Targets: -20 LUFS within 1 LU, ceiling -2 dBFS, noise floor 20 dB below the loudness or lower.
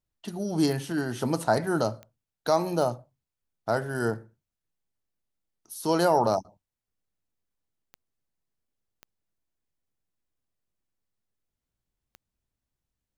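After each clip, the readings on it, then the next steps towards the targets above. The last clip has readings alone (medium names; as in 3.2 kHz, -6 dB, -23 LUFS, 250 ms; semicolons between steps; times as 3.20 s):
clicks found 6; loudness -27.5 LUFS; peak level -10.0 dBFS; loudness target -20.0 LUFS
-> de-click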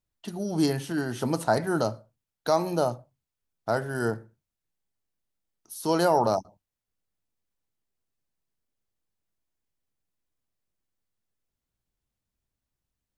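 clicks found 0; loudness -27.0 LUFS; peak level -10.0 dBFS; loudness target -20.0 LUFS
-> trim +7 dB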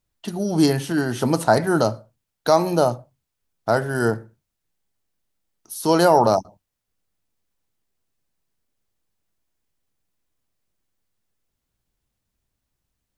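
loudness -20.0 LUFS; peak level -3.0 dBFS; noise floor -80 dBFS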